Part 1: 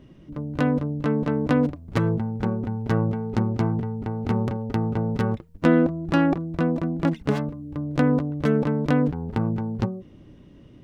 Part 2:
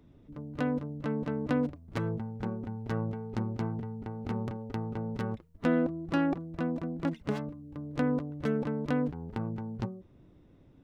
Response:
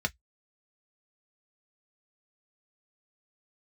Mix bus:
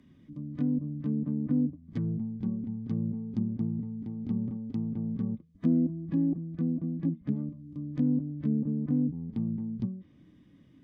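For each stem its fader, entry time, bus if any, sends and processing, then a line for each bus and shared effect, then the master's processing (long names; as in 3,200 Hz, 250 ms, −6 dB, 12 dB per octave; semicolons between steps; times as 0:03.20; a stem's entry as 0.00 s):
−7.0 dB, 0.00 s, no send, high-pass filter 160 Hz 24 dB per octave; high-shelf EQ 4,800 Hz −8.5 dB
+1.5 dB, 0.00 s, polarity flipped, no send, no processing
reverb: not used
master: treble cut that deepens with the level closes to 690 Hz, closed at −23 dBFS; flat-topped bell 590 Hz −11.5 dB; notch comb filter 1,400 Hz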